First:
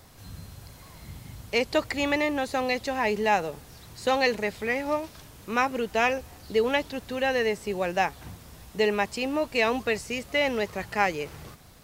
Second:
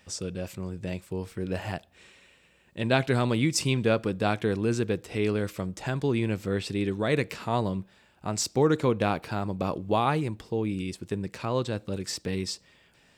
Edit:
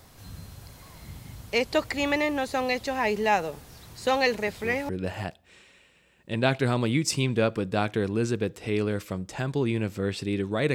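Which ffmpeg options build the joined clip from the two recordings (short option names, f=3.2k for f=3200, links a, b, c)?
-filter_complex "[1:a]asplit=2[a][b];[0:a]apad=whole_dur=10.74,atrim=end=10.74,atrim=end=4.892[c];[b]atrim=start=1.368:end=7.22[d];[a]atrim=start=0.95:end=1.37,asetpts=PTS-STARTPTS,volume=-6dB,afade=t=in:d=0.004:c=hsin,afade=t=out:st=0.416:d=0.004:c=hsin,adelay=4470[e];[c][d]acrossfade=d=0.004:c1=hsin:c2=hsin[f];[f][e]amix=inputs=2:normalize=0"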